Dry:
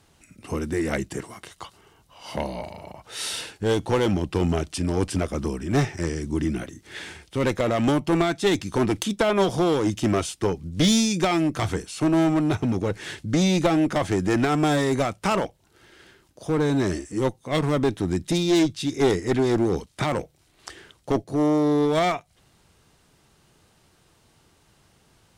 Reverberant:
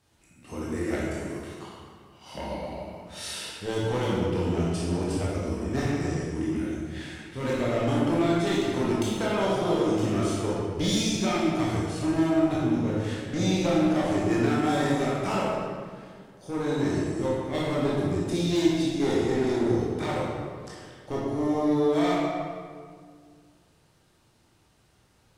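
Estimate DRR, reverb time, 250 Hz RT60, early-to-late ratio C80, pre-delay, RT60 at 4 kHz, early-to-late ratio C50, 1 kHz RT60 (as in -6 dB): -6.5 dB, 1.9 s, 2.3 s, 0.0 dB, 15 ms, 1.2 s, -2.5 dB, 1.8 s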